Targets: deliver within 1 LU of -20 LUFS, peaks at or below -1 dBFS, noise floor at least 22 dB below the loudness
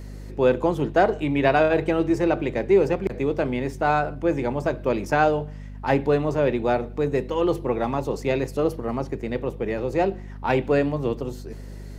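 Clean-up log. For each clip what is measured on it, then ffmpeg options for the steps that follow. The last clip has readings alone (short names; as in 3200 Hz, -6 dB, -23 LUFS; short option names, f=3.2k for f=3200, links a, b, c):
hum 50 Hz; harmonics up to 250 Hz; hum level -34 dBFS; loudness -23.5 LUFS; peak -6.0 dBFS; loudness target -20.0 LUFS
-> -af "bandreject=f=50:t=h:w=4,bandreject=f=100:t=h:w=4,bandreject=f=150:t=h:w=4,bandreject=f=200:t=h:w=4,bandreject=f=250:t=h:w=4"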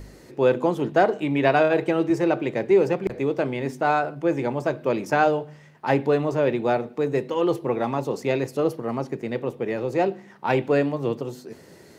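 hum none; loudness -23.5 LUFS; peak -6.5 dBFS; loudness target -20.0 LUFS
-> -af "volume=3.5dB"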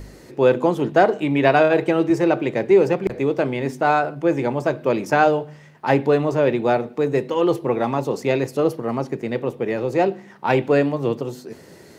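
loudness -20.0 LUFS; peak -3.0 dBFS; noise floor -46 dBFS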